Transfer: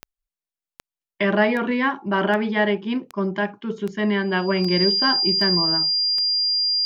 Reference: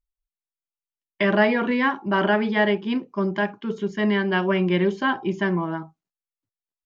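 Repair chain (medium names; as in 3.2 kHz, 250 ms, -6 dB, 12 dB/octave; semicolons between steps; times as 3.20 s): de-click; band-stop 4.8 kHz, Q 30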